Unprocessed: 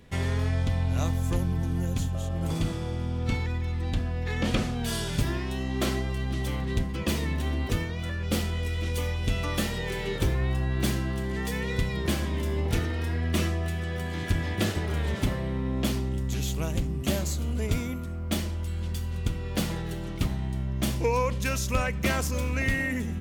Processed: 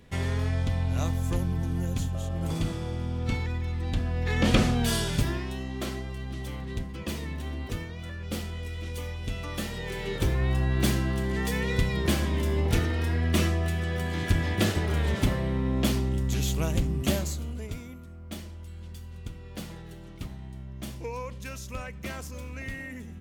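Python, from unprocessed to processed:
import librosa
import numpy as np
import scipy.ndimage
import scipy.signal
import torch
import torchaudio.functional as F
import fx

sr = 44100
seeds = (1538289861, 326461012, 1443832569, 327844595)

y = fx.gain(x, sr, db=fx.line((3.86, -1.0), (4.69, 6.0), (5.83, -6.0), (9.47, -6.0), (10.59, 2.0), (17.05, 2.0), (17.77, -10.5)))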